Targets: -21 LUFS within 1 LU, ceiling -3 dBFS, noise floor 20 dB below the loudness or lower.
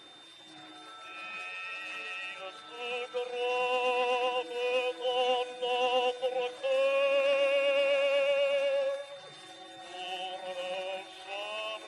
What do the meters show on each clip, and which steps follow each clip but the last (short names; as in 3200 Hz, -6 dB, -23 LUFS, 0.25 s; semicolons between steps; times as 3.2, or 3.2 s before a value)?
steady tone 3600 Hz; tone level -52 dBFS; loudness -31.0 LUFS; peak -18.0 dBFS; loudness target -21.0 LUFS
-> notch 3600 Hz, Q 30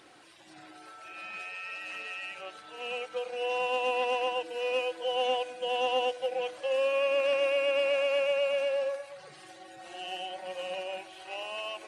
steady tone none; loudness -31.0 LUFS; peak -18.5 dBFS; loudness target -21.0 LUFS
-> gain +10 dB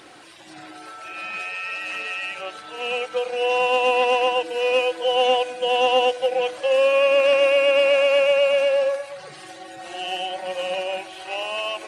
loudness -21.0 LUFS; peak -8.5 dBFS; noise floor -42 dBFS